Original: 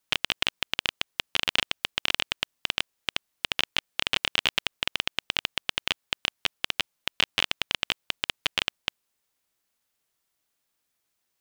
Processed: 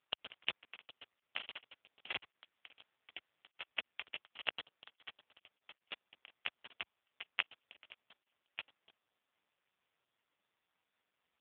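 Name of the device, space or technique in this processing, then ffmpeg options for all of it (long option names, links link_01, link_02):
telephone: -filter_complex "[0:a]asplit=3[link_01][link_02][link_03];[link_01]afade=type=out:start_time=2.42:duration=0.02[link_04];[link_02]adynamicequalizer=threshold=0.01:dfrequency=2500:dqfactor=0.75:tfrequency=2500:tqfactor=0.75:attack=5:release=100:ratio=0.375:range=2:mode=boostabove:tftype=bell,afade=type=in:start_time=2.42:duration=0.02,afade=type=out:start_time=3.53:duration=0.02[link_05];[link_03]afade=type=in:start_time=3.53:duration=0.02[link_06];[link_04][link_05][link_06]amix=inputs=3:normalize=0,highpass=340,lowpass=3000,asoftclip=type=tanh:threshold=-9.5dB,volume=6.5dB" -ar 8000 -c:a libopencore_amrnb -b:a 4750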